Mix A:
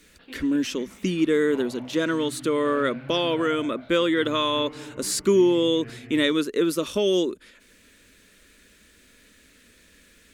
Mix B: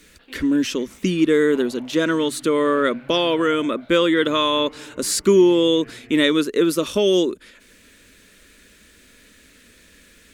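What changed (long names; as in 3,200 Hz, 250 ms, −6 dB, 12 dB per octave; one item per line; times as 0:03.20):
speech +4.5 dB
background: add high-pass filter 240 Hz 6 dB per octave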